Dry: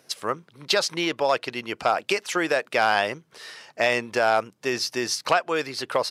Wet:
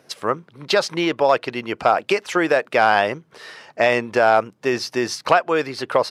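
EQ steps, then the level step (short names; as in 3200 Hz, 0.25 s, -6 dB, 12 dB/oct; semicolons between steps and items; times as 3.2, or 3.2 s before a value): high shelf 2900 Hz -10.5 dB; +6.5 dB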